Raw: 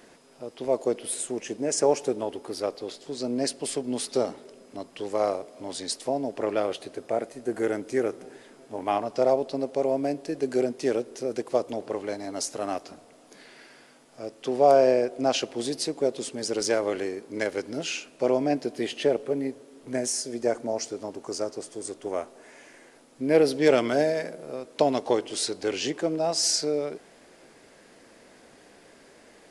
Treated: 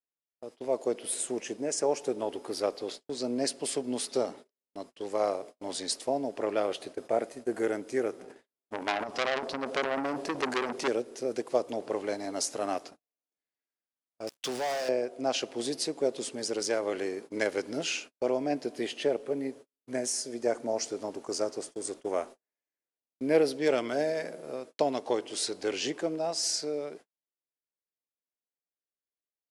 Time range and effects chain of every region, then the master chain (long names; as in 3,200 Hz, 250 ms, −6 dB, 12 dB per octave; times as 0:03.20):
0:08.19–0:10.88: transient designer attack +7 dB, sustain +11 dB + high-shelf EQ 4,400 Hz −4.5 dB + saturating transformer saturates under 2,800 Hz
0:14.27–0:14.89: guitar amp tone stack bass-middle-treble 5-5-5 + leveller curve on the samples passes 5
whole clip: noise gate −41 dBFS, range −48 dB; low-shelf EQ 130 Hz −9 dB; speech leveller within 3 dB 0.5 s; level −3 dB